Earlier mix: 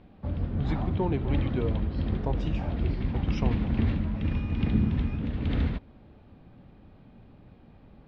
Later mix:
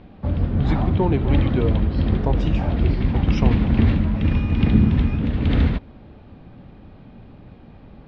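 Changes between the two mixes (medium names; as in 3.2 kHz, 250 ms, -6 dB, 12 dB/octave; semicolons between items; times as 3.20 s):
speech +7.5 dB; background +9.0 dB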